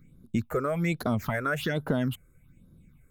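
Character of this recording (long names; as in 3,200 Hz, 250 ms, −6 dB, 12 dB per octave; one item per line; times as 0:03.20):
phaser sweep stages 6, 1.2 Hz, lowest notch 200–2,400 Hz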